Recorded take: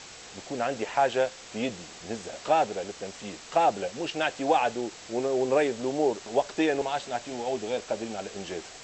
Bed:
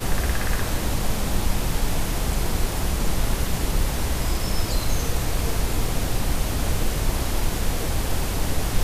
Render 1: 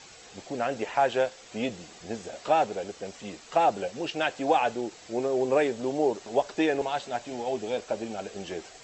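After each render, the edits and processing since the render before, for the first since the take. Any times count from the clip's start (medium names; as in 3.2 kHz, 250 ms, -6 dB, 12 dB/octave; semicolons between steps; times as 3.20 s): noise reduction 7 dB, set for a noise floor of -46 dBFS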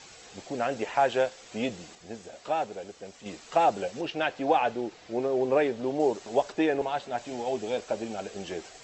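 1.95–3.26 s: gain -5.5 dB; 4.01–6.00 s: distance through air 110 m; 6.52–7.18 s: treble shelf 4 kHz -9 dB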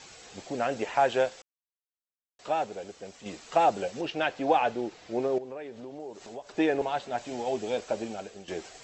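1.42–2.39 s: mute; 5.38–6.58 s: compression 3:1, threshold -42 dBFS; 8.02–8.48 s: fade out, to -12 dB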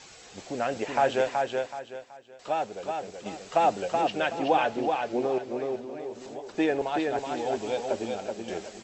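feedback delay 376 ms, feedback 30%, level -4 dB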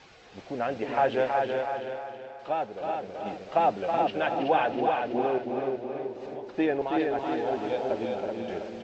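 distance through air 210 m; feedback delay 323 ms, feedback 42%, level -6 dB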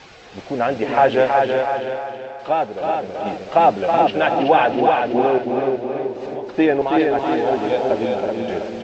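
trim +10 dB; peak limiter -3 dBFS, peak gain reduction 1 dB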